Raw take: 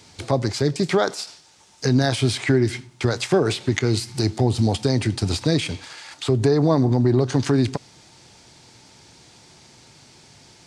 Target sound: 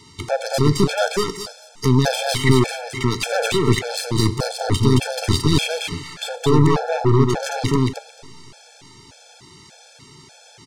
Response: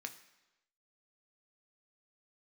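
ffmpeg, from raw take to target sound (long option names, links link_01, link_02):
-filter_complex "[0:a]alimiter=limit=-12.5dB:level=0:latency=1:release=12,aeval=exprs='0.237*(cos(1*acos(clip(val(0)/0.237,-1,1)))-cos(1*PI/2))+0.0596*(cos(4*acos(clip(val(0)/0.237,-1,1)))-cos(4*PI/2))':channel_layout=same,aecho=1:1:220|440|660:0.708|0.106|0.0159,asplit=2[link_01][link_02];[1:a]atrim=start_sample=2205,asetrate=24696,aresample=44100[link_03];[link_02][link_03]afir=irnorm=-1:irlink=0,volume=-6.5dB[link_04];[link_01][link_04]amix=inputs=2:normalize=0,afftfilt=real='re*gt(sin(2*PI*1.7*pts/sr)*(1-2*mod(floor(b*sr/1024/450),2)),0)':imag='im*gt(sin(2*PI*1.7*pts/sr)*(1-2*mod(floor(b*sr/1024/450),2)),0)':win_size=1024:overlap=0.75,volume=2dB"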